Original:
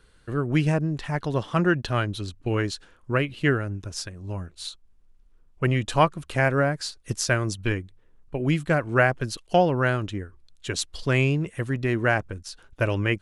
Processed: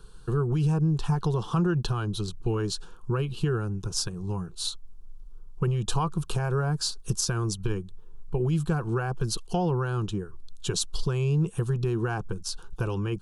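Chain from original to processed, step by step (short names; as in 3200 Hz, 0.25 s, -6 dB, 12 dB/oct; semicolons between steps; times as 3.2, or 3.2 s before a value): low shelf 120 Hz +9 dB; limiter -16 dBFS, peak gain reduction 10.5 dB; compressor 2.5:1, threshold -29 dBFS, peak gain reduction 6.5 dB; fixed phaser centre 400 Hz, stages 8; gain +7 dB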